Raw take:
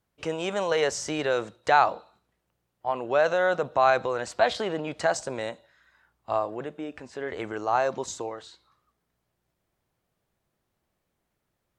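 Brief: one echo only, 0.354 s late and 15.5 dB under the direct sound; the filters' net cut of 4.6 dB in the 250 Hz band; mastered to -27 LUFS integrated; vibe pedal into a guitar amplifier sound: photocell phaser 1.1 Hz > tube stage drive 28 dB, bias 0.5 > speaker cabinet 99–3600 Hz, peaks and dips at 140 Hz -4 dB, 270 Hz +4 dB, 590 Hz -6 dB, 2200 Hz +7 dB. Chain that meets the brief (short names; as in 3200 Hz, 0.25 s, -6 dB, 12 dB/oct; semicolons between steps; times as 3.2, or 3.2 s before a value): bell 250 Hz -8.5 dB; echo 0.354 s -15.5 dB; photocell phaser 1.1 Hz; tube stage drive 28 dB, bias 0.5; speaker cabinet 99–3600 Hz, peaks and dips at 140 Hz -4 dB, 270 Hz +4 dB, 590 Hz -6 dB, 2200 Hz +7 dB; gain +11 dB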